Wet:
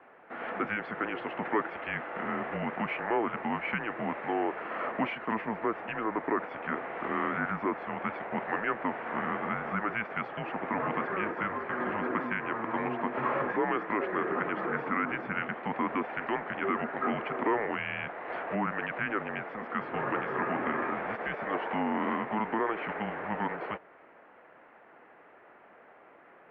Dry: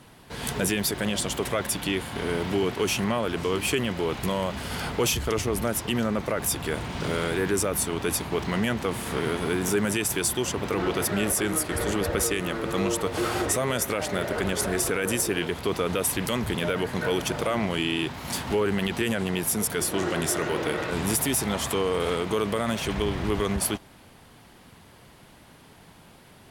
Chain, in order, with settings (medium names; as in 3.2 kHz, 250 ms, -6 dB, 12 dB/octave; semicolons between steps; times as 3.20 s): high-pass 410 Hz 12 dB/octave; mistuned SSB -220 Hz 520–2300 Hz; trim +1.5 dB